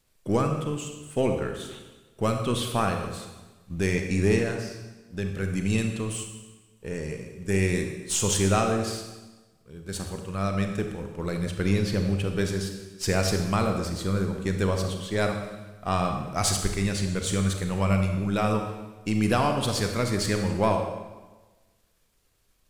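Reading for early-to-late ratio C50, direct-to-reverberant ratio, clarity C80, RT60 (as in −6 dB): 5.5 dB, 4.0 dB, 7.5 dB, 1.2 s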